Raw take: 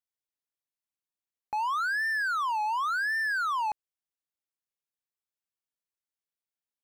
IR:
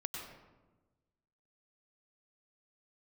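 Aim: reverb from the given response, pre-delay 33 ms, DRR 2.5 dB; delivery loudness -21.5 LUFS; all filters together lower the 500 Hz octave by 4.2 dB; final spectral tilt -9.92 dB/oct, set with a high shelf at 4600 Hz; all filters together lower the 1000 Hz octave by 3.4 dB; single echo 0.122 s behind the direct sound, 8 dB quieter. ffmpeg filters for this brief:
-filter_complex "[0:a]equalizer=f=500:t=o:g=-4.5,equalizer=f=1k:t=o:g=-3.5,highshelf=f=4.6k:g=6.5,aecho=1:1:122:0.398,asplit=2[a][b];[1:a]atrim=start_sample=2205,adelay=33[c];[b][c]afir=irnorm=-1:irlink=0,volume=-2.5dB[d];[a][d]amix=inputs=2:normalize=0,volume=5.5dB"

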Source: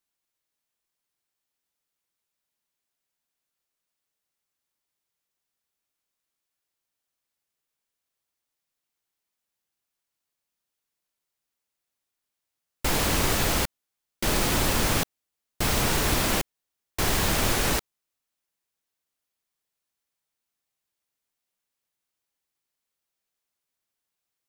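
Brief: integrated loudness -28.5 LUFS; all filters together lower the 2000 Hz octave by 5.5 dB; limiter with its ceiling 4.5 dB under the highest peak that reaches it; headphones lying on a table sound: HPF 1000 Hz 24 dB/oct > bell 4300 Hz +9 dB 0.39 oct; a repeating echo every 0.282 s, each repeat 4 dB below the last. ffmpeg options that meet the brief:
-af "equalizer=f=2k:t=o:g=-7.5,alimiter=limit=-16dB:level=0:latency=1,highpass=f=1k:w=0.5412,highpass=f=1k:w=1.3066,equalizer=f=4.3k:t=o:w=0.39:g=9,aecho=1:1:282|564|846|1128|1410|1692|1974|2256|2538:0.631|0.398|0.25|0.158|0.0994|0.0626|0.0394|0.0249|0.0157,volume=-2.5dB"

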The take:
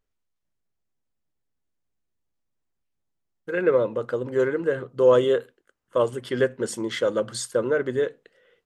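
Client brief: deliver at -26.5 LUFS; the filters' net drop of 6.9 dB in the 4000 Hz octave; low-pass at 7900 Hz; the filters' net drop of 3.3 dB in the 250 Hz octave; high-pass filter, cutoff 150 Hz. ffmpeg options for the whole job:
-af "highpass=150,lowpass=7.9k,equalizer=f=250:t=o:g=-4.5,equalizer=f=4k:t=o:g=-9,volume=-1dB"

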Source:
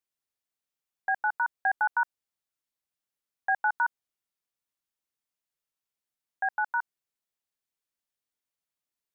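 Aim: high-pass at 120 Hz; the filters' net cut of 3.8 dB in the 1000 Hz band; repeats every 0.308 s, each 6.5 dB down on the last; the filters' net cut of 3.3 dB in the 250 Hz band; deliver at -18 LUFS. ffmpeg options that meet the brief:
-af "highpass=120,equalizer=f=250:t=o:g=-4,equalizer=f=1k:t=o:g=-4.5,aecho=1:1:308|616|924|1232|1540|1848:0.473|0.222|0.105|0.0491|0.0231|0.0109,volume=15dB"

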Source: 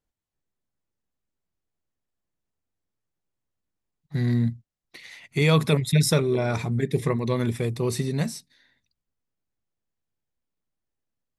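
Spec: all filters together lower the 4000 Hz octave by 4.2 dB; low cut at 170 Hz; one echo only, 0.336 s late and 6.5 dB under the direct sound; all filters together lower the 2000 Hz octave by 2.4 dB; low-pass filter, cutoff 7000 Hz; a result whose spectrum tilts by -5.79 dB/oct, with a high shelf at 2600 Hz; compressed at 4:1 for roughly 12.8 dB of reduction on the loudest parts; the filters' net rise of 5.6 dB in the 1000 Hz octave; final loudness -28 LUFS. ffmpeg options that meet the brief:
-af "highpass=170,lowpass=7k,equalizer=f=1k:t=o:g=8,equalizer=f=2k:t=o:g=-5,highshelf=f=2.6k:g=4,equalizer=f=4k:t=o:g=-7.5,acompressor=threshold=-31dB:ratio=4,aecho=1:1:336:0.473,volume=6.5dB"

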